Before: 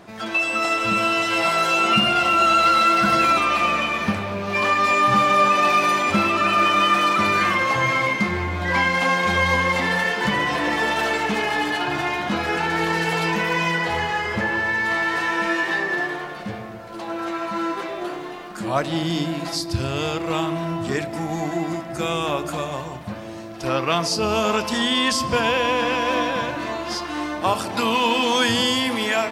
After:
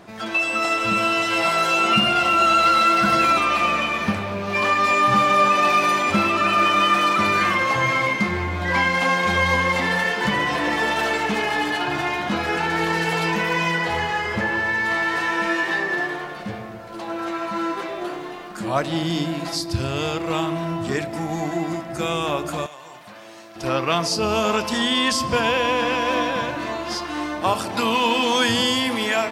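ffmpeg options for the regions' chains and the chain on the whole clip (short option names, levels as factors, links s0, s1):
-filter_complex "[0:a]asettb=1/sr,asplit=3[s0][s1][s2];[s0]atrim=end=22.664[s3];[s1]atrim=start=22.66:end=23.56,asetpts=PTS-STARTPTS,afade=t=in:d=0.004:c=qsin,afade=t=out:st=0.896:d=0.004:c=qsin,highpass=f=1100:p=1,acompressor=threshold=0.0158:ratio=6:attack=3.2:release=140:knee=1:detection=peak[s4];[s2]atrim=start=23.556[s5];[s3][s4]acrossfade=d=0.004:c1=hsin:c2=qsin[s6];[s6][s5]acrossfade=d=0.004:c1=qsin:c2=hsin"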